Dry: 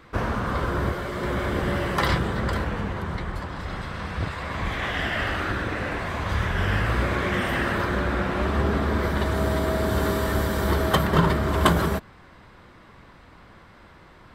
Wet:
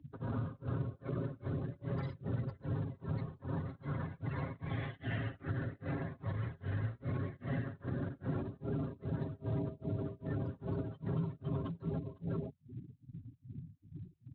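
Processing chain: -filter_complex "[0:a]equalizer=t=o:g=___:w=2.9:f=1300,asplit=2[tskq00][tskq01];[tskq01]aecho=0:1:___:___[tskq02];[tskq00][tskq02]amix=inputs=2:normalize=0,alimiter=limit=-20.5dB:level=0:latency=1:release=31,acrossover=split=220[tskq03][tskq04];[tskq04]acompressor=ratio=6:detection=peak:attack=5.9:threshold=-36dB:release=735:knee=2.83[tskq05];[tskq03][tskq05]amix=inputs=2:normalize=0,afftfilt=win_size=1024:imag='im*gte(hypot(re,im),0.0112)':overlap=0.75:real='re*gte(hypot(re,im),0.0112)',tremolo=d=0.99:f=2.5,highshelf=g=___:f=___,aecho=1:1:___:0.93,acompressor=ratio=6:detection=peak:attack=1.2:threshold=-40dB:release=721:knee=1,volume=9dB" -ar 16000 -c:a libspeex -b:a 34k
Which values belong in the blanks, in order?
-10, 507, 0.299, -3, 3900, 7.4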